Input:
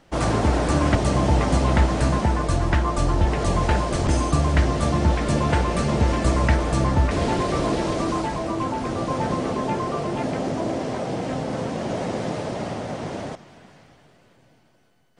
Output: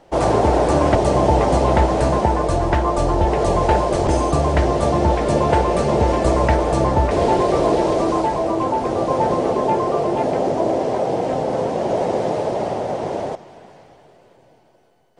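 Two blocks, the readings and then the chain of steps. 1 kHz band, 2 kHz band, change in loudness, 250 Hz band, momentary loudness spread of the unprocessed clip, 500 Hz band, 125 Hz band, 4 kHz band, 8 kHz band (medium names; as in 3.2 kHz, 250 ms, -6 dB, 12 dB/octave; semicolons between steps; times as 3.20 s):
+7.0 dB, 0.0 dB, +4.5 dB, +2.5 dB, 7 LU, +9.0 dB, 0.0 dB, 0.0 dB, 0.0 dB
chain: high-order bell 580 Hz +9 dB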